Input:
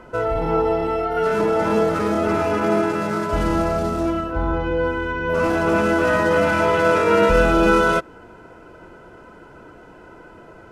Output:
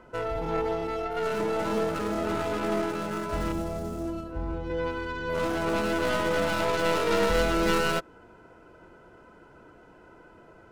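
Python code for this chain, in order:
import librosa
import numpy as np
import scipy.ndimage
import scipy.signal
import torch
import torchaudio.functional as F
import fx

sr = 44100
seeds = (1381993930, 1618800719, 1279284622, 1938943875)

y = fx.tracing_dist(x, sr, depth_ms=0.28)
y = fx.peak_eq(y, sr, hz=1900.0, db=-9.0, octaves=2.8, at=(3.52, 4.7))
y = F.gain(torch.from_numpy(y), -9.0).numpy()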